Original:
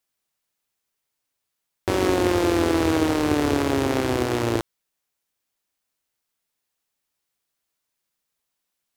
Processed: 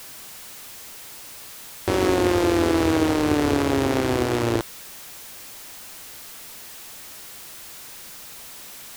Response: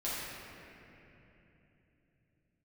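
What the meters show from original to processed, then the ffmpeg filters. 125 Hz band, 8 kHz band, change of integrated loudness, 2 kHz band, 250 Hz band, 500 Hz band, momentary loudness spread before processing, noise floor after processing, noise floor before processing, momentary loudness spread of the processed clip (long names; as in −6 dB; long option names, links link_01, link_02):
+1.0 dB, +3.5 dB, +0.5 dB, +0.5 dB, +1.0 dB, +0.5 dB, 6 LU, −41 dBFS, −81 dBFS, 17 LU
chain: -af "aeval=exprs='val(0)+0.5*0.02*sgn(val(0))':channel_layout=same"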